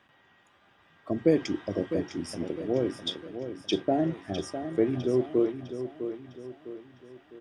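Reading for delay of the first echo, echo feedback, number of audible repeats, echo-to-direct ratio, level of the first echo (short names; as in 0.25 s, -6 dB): 0.655 s, 43%, 4, -8.5 dB, -9.5 dB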